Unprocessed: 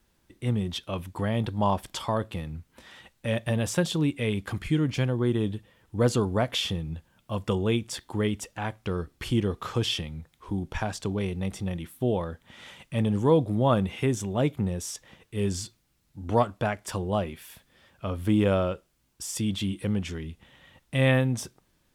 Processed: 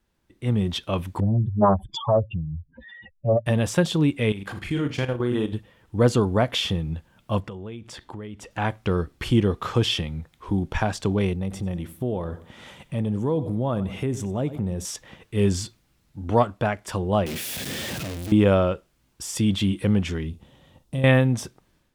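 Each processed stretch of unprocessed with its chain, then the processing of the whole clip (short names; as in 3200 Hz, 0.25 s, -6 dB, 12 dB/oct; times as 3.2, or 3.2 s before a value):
1.2–3.46 spectral contrast raised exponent 3.8 + dynamic EQ 600 Hz, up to +6 dB, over -42 dBFS, Q 4.1 + Doppler distortion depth 0.38 ms
4.32–5.53 low shelf 250 Hz -8 dB + flutter echo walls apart 7 m, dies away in 0.32 s + level quantiser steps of 10 dB
7.4–8.51 high shelf 6100 Hz -10.5 dB + compressor, threshold -41 dBFS
11.33–14.85 feedback echo 93 ms, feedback 32%, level -17.5 dB + compressor 2:1, threshold -34 dBFS + bell 2400 Hz -5.5 dB 2.6 oct
17.26–18.32 infinite clipping + HPF 110 Hz + bell 1100 Hz -11.5 dB 1.5 oct
20.29–21.04 bell 1900 Hz -13.5 dB 1.6 oct + compressor 4:1, threshold -29 dBFS + doubler 44 ms -12 dB
whole clip: high shelf 4800 Hz -6 dB; AGC gain up to 11.5 dB; gain -4.5 dB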